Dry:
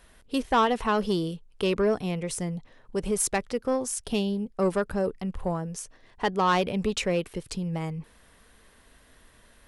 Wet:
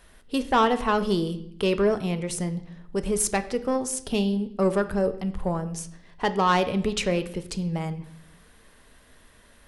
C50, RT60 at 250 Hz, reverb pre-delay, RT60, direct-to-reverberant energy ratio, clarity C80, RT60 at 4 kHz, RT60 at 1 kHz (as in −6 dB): 14.5 dB, 1.1 s, 5 ms, 0.70 s, 10.5 dB, 17.0 dB, 0.65 s, 0.70 s